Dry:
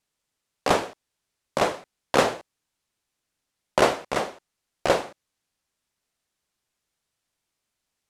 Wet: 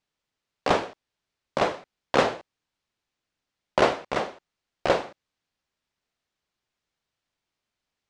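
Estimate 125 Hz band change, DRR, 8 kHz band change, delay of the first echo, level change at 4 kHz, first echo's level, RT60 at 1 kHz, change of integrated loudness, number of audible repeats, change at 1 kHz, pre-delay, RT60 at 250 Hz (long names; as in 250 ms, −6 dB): −1.0 dB, no reverb audible, −8.0 dB, no echo audible, −2.0 dB, no echo audible, no reverb audible, −1.0 dB, no echo audible, −1.0 dB, no reverb audible, no reverb audible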